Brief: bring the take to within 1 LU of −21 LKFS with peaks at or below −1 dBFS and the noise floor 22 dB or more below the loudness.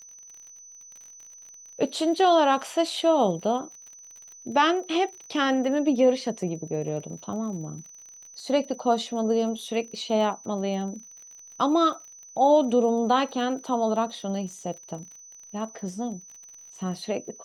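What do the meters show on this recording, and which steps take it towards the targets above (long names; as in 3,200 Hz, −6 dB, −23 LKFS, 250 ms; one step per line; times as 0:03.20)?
crackle rate 42 per second; interfering tone 6,000 Hz; level of the tone −45 dBFS; integrated loudness −25.5 LKFS; sample peak −9.0 dBFS; target loudness −21.0 LKFS
→ click removal
notch filter 6,000 Hz, Q 30
level +4.5 dB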